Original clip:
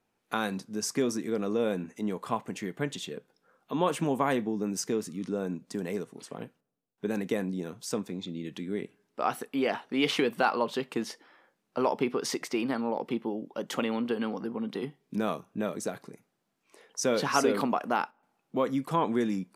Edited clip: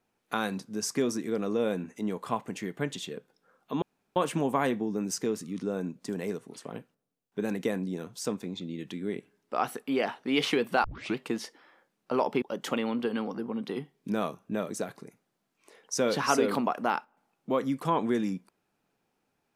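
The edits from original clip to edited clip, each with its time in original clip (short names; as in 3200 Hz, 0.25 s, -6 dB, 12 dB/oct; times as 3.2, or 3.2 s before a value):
3.82 insert room tone 0.34 s
10.5 tape start 0.33 s
12.08–13.48 cut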